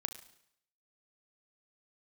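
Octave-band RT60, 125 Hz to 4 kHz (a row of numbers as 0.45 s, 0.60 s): 0.70 s, 0.70 s, 0.70 s, 0.75 s, 0.70 s, 0.70 s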